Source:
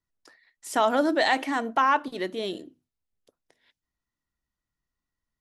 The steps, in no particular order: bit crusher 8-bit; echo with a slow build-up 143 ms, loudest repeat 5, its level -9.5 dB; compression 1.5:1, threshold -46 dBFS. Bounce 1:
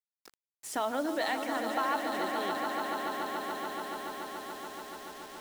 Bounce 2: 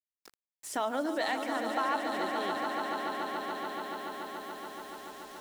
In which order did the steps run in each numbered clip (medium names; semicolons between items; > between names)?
echo with a slow build-up > compression > bit crusher; echo with a slow build-up > bit crusher > compression